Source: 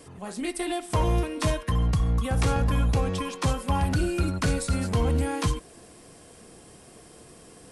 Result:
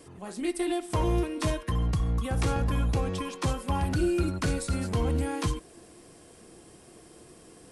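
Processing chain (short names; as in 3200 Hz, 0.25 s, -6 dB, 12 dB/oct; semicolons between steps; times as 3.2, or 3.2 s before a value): bell 340 Hz +7 dB 0.27 oct; gain -3.5 dB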